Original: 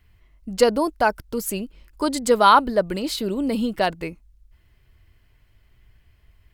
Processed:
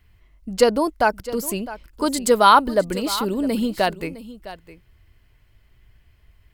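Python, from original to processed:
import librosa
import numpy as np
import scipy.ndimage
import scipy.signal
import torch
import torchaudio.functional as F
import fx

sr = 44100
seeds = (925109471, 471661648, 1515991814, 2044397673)

y = fx.high_shelf(x, sr, hz=10000.0, db=8.0, at=(2.06, 4.07))
y = y + 10.0 ** (-16.0 / 20.0) * np.pad(y, (int(659 * sr / 1000.0), 0))[:len(y)]
y = F.gain(torch.from_numpy(y), 1.0).numpy()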